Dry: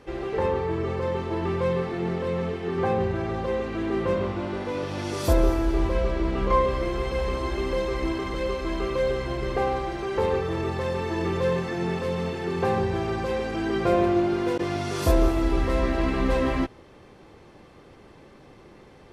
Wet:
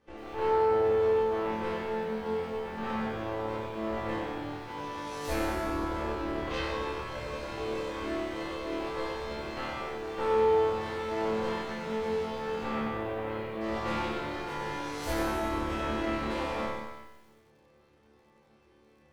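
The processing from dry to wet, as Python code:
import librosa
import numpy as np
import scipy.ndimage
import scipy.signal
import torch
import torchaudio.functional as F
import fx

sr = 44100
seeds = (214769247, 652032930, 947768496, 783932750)

y = fx.cheby1_lowpass(x, sr, hz=2800.0, order=6, at=(12.63, 13.6), fade=0.02)
y = fx.cheby_harmonics(y, sr, harmonics=(8,), levels_db=(-9,), full_scale_db=-9.0)
y = fx.resonator_bank(y, sr, root=38, chord='fifth', decay_s=0.77)
y = fx.rev_gated(y, sr, seeds[0], gate_ms=410, shape='falling', drr_db=2.5)
y = fx.echo_crushed(y, sr, ms=93, feedback_pct=55, bits=10, wet_db=-8.5)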